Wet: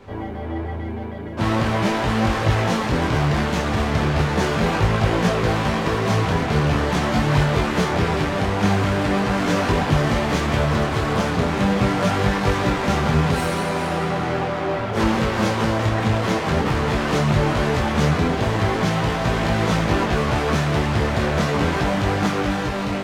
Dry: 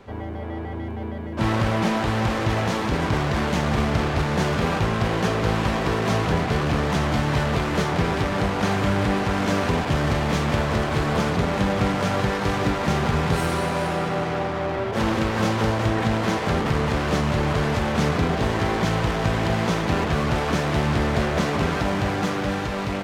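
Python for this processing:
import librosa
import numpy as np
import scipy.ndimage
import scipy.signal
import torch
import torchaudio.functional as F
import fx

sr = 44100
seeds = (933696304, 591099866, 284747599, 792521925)

y = fx.detune_double(x, sr, cents=14)
y = F.gain(torch.from_numpy(y), 6.0).numpy()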